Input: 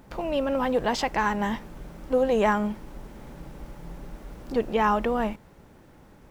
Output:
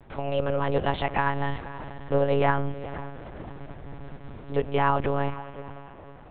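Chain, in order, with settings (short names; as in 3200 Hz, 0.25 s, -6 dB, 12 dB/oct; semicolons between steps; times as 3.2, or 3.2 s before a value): diffused feedback echo 0.481 s, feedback 41%, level -14.5 dB; monotone LPC vocoder at 8 kHz 140 Hz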